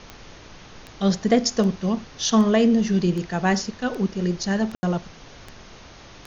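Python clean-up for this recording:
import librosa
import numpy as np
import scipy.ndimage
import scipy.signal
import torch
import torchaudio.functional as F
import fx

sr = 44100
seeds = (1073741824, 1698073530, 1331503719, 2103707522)

y = fx.fix_declick_ar(x, sr, threshold=10.0)
y = fx.fix_ambience(y, sr, seeds[0], print_start_s=5.75, print_end_s=6.25, start_s=4.75, end_s=4.83)
y = fx.noise_reduce(y, sr, print_start_s=5.75, print_end_s=6.25, reduce_db=22.0)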